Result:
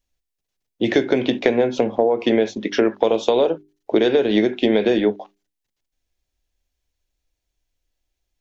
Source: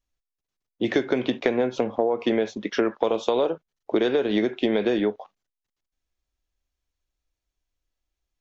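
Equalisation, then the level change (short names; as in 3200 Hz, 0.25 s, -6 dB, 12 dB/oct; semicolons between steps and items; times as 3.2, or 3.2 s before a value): bell 1200 Hz -7 dB 0.61 oct; notches 50/100/150/200/250/300/350/400 Hz; +6.0 dB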